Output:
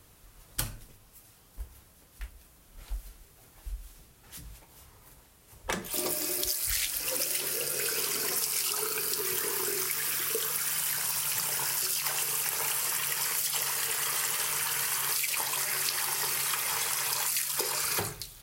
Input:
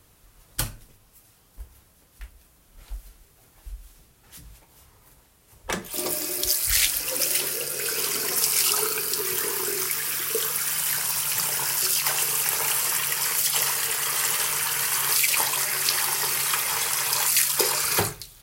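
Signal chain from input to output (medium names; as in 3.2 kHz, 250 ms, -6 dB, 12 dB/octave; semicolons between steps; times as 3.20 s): compression, threshold -27 dBFS, peak gain reduction 11 dB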